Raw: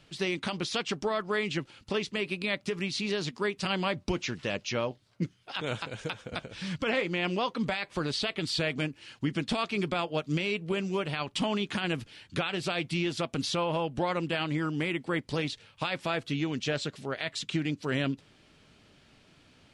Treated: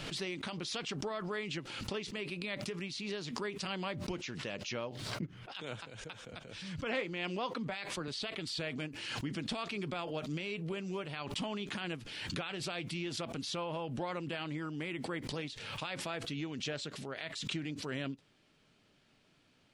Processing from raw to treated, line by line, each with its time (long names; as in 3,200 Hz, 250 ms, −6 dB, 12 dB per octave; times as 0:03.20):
0:05.21–0:08.08: multiband upward and downward expander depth 100%
whole clip: parametric band 63 Hz −11.5 dB 0.77 octaves; background raised ahead of every attack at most 35 dB per second; level −9 dB